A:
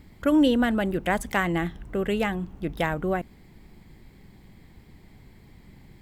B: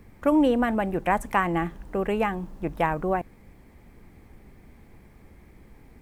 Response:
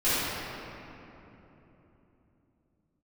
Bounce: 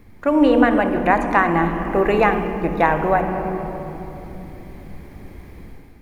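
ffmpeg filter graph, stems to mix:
-filter_complex "[0:a]volume=-7dB[link_01];[1:a]volume=-1,volume=0.5dB,asplit=2[link_02][link_03];[link_03]volume=-19dB[link_04];[2:a]atrim=start_sample=2205[link_05];[link_04][link_05]afir=irnorm=-1:irlink=0[link_06];[link_01][link_02][link_06]amix=inputs=3:normalize=0,acrossover=split=6300[link_07][link_08];[link_08]acompressor=threshold=-60dB:ratio=4:attack=1:release=60[link_09];[link_07][link_09]amix=inputs=2:normalize=0,bandreject=frequency=7800:width=9.2,dynaudnorm=framelen=110:gausssize=7:maxgain=8dB"

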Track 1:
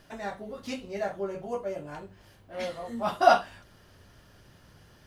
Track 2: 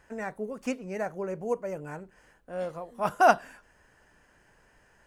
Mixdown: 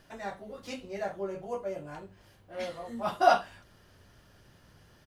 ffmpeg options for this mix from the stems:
ffmpeg -i stem1.wav -i stem2.wav -filter_complex "[0:a]volume=-3dB[link_01];[1:a]adelay=0.9,volume=-14dB[link_02];[link_01][link_02]amix=inputs=2:normalize=0" out.wav

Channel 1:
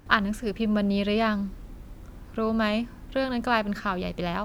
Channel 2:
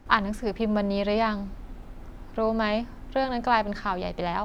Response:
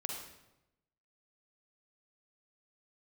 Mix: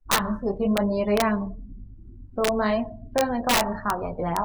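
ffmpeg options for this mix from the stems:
-filter_complex "[0:a]highpass=190,highshelf=frequency=2500:gain=-2.5,bandreject=frequency=60:width_type=h:width=6,bandreject=frequency=120:width_type=h:width=6,bandreject=frequency=180:width_type=h:width=6,bandreject=frequency=240:width_type=h:width=6,bandreject=frequency=300:width_type=h:width=6,volume=-7dB[link_01];[1:a]adynamicequalizer=threshold=0.00316:dfrequency=110:dqfactor=2.2:tfrequency=110:tqfactor=2.2:attack=5:release=100:ratio=0.375:range=3.5:mode=boostabove:tftype=bell,flanger=delay=18:depth=7.4:speed=1,volume=0.5dB,asplit=2[link_02][link_03];[link_03]volume=-6.5dB[link_04];[2:a]atrim=start_sample=2205[link_05];[link_04][link_05]afir=irnorm=-1:irlink=0[link_06];[link_01][link_02][link_06]amix=inputs=3:normalize=0,afftdn=noise_reduction=33:noise_floor=-34,aeval=exprs='(mod(4.73*val(0)+1,2)-1)/4.73':channel_layout=same"

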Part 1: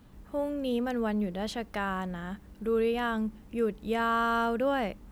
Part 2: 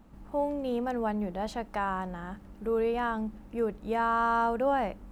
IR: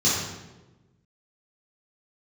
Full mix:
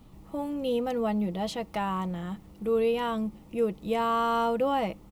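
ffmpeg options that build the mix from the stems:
-filter_complex "[0:a]volume=1.5dB[link_01];[1:a]adelay=6.3,volume=-4.5dB[link_02];[link_01][link_02]amix=inputs=2:normalize=0,equalizer=frequency=1600:width=5.5:gain=-14.5"

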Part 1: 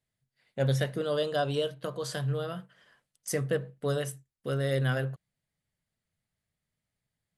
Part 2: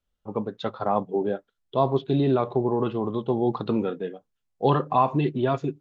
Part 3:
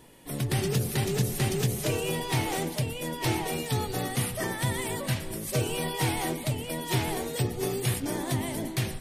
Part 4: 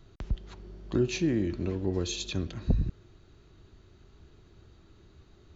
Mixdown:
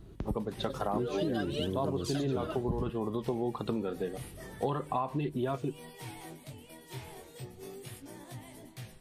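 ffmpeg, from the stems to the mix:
ffmpeg -i stem1.wav -i stem2.wav -i stem3.wav -i stem4.wav -filter_complex "[0:a]dynaudnorm=framelen=240:gausssize=9:maxgain=6dB,aphaser=in_gain=1:out_gain=1:delay=4.8:decay=0.79:speed=0.53:type=triangular,volume=-3.5dB[link_01];[1:a]volume=1dB[link_02];[2:a]flanger=delay=16.5:depth=6.6:speed=0.35,volume=-14dB[link_03];[3:a]equalizer=frequency=230:width=0.34:gain=12.5,aeval=exprs='val(0)+0.00398*(sin(2*PI*50*n/s)+sin(2*PI*2*50*n/s)/2+sin(2*PI*3*50*n/s)/3+sin(2*PI*4*50*n/s)/4+sin(2*PI*5*50*n/s)/5)':channel_layout=same,volume=-5dB,asplit=2[link_04][link_05];[link_05]apad=whole_len=325292[link_06];[link_01][link_06]sidechaingate=range=-33dB:threshold=-40dB:ratio=16:detection=peak[link_07];[link_07][link_02][link_03][link_04]amix=inputs=4:normalize=0,acompressor=threshold=-30dB:ratio=5" out.wav

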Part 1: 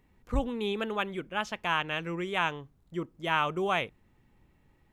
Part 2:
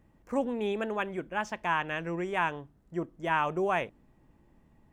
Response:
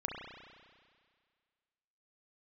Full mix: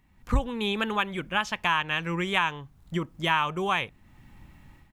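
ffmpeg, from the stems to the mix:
-filter_complex "[0:a]equalizer=frequency=440:width_type=o:width=0.67:gain=-13.5,volume=2dB[link_01];[1:a]highpass=180,volume=-1,adelay=1.4,volume=-19dB,asplit=2[link_02][link_03];[link_03]apad=whole_len=217286[link_04];[link_01][link_04]sidechaincompress=threshold=-52dB:ratio=5:attack=7.9:release=539[link_05];[link_05][link_02]amix=inputs=2:normalize=0,dynaudnorm=framelen=170:gausssize=3:maxgain=12dB"

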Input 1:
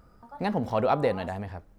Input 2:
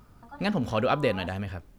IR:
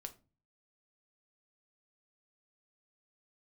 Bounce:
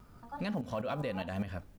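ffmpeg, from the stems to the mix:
-filter_complex "[0:a]acrusher=bits=8:mode=log:mix=0:aa=0.000001,aeval=exprs='val(0)*pow(10,-21*if(lt(mod(-4.9*n/s,1),2*abs(-4.9)/1000),1-mod(-4.9*n/s,1)/(2*abs(-4.9)/1000),(mod(-4.9*n/s,1)-2*abs(-4.9)/1000)/(1-2*abs(-4.9)/1000))/20)':channel_layout=same,volume=1.5dB,asplit=2[link_01][link_02];[1:a]volume=-1,adelay=2.1,volume=-4dB,asplit=2[link_03][link_04];[link_04]volume=-7dB[link_05];[link_02]apad=whole_len=78873[link_06];[link_03][link_06]sidechaincompress=threshold=-36dB:ratio=8:attack=29:release=223[link_07];[2:a]atrim=start_sample=2205[link_08];[link_05][link_08]afir=irnorm=-1:irlink=0[link_09];[link_01][link_07][link_09]amix=inputs=3:normalize=0,alimiter=level_in=2dB:limit=-24dB:level=0:latency=1:release=254,volume=-2dB"

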